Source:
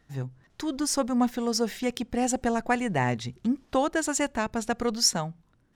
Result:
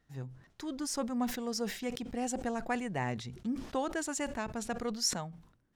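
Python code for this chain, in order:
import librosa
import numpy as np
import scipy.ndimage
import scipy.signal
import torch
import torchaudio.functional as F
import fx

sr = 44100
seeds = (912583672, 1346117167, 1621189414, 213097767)

y = fx.sustainer(x, sr, db_per_s=97.0)
y = F.gain(torch.from_numpy(y), -9.0).numpy()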